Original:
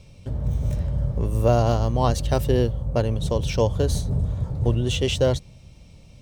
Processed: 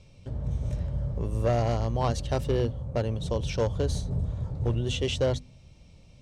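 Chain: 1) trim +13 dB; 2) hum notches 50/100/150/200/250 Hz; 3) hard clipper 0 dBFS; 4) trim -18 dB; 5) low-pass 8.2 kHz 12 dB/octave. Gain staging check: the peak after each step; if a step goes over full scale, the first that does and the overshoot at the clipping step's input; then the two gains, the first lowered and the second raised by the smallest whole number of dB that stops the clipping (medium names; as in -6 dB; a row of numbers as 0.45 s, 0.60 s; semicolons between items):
+7.0 dBFS, +7.0 dBFS, 0.0 dBFS, -18.0 dBFS, -17.5 dBFS; step 1, 7.0 dB; step 1 +6 dB, step 4 -11 dB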